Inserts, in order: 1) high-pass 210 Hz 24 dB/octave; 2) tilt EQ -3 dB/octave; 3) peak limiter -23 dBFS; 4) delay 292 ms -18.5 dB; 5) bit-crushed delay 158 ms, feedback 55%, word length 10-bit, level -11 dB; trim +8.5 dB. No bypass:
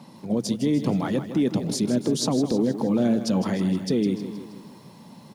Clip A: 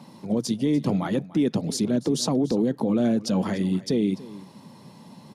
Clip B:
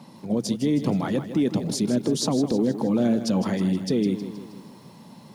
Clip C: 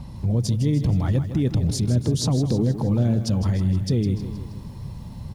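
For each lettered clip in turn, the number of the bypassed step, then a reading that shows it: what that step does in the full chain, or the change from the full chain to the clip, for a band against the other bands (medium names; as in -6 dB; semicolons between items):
5, momentary loudness spread change -3 LU; 4, momentary loudness spread change -1 LU; 1, 125 Hz band +12.5 dB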